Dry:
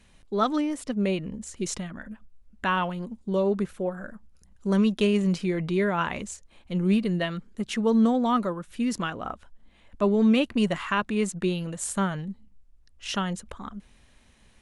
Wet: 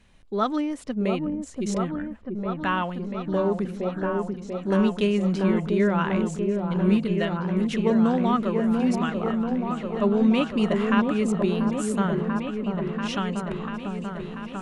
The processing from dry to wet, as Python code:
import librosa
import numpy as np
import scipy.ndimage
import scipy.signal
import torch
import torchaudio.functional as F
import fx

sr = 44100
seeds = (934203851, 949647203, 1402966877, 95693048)

y = fx.high_shelf(x, sr, hz=5800.0, db=-8.0)
y = fx.echo_opening(y, sr, ms=689, hz=750, octaves=1, feedback_pct=70, wet_db=-3)